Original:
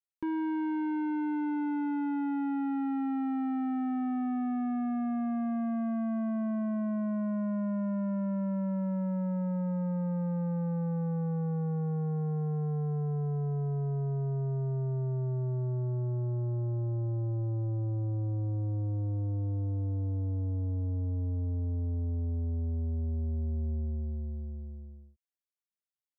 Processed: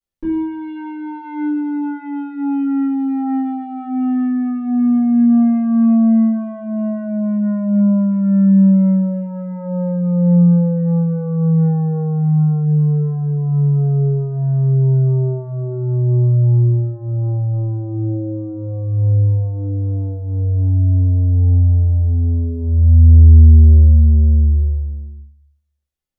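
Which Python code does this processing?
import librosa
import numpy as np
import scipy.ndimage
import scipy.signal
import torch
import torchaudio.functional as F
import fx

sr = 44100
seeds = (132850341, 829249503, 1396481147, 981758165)

y = fx.low_shelf(x, sr, hz=330.0, db=11.5)
y = fx.room_shoebox(y, sr, seeds[0], volume_m3=39.0, walls='mixed', distance_m=2.3)
y = y * librosa.db_to_amplitude(-6.5)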